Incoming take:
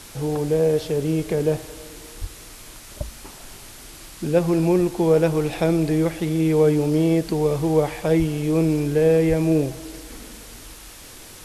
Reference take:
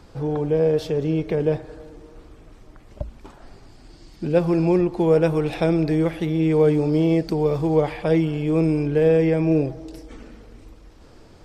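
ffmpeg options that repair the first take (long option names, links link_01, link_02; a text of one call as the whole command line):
ffmpeg -i in.wav -filter_complex "[0:a]asplit=3[link_01][link_02][link_03];[link_01]afade=type=out:start_time=2.2:duration=0.02[link_04];[link_02]highpass=frequency=140:width=0.5412,highpass=frequency=140:width=1.3066,afade=type=in:start_time=2.2:duration=0.02,afade=type=out:start_time=2.32:duration=0.02[link_05];[link_03]afade=type=in:start_time=2.32:duration=0.02[link_06];[link_04][link_05][link_06]amix=inputs=3:normalize=0,asplit=3[link_07][link_08][link_09];[link_07]afade=type=out:start_time=8.18:duration=0.02[link_10];[link_08]highpass=frequency=140:width=0.5412,highpass=frequency=140:width=1.3066,afade=type=in:start_time=8.18:duration=0.02,afade=type=out:start_time=8.3:duration=0.02[link_11];[link_09]afade=type=in:start_time=8.3:duration=0.02[link_12];[link_10][link_11][link_12]amix=inputs=3:normalize=0,asplit=3[link_13][link_14][link_15];[link_13]afade=type=out:start_time=9.28:duration=0.02[link_16];[link_14]highpass=frequency=140:width=0.5412,highpass=frequency=140:width=1.3066,afade=type=in:start_time=9.28:duration=0.02,afade=type=out:start_time=9.4:duration=0.02[link_17];[link_15]afade=type=in:start_time=9.4:duration=0.02[link_18];[link_16][link_17][link_18]amix=inputs=3:normalize=0,afwtdn=0.0089" out.wav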